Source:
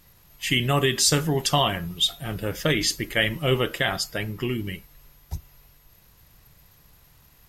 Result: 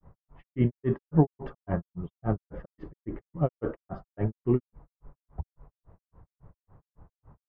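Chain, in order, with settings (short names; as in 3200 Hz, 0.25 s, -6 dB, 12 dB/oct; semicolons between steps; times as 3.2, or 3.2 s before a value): LPF 1100 Hz 24 dB/oct; grains 0.16 s, grains 3.6/s, pitch spread up and down by 0 st; gain +6.5 dB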